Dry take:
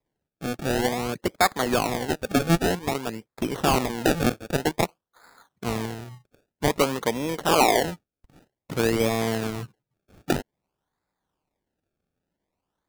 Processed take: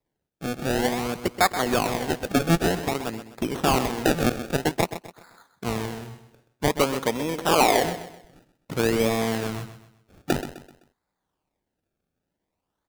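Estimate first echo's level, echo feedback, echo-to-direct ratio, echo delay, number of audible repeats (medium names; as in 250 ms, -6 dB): -11.5 dB, 37%, -11.0 dB, 128 ms, 3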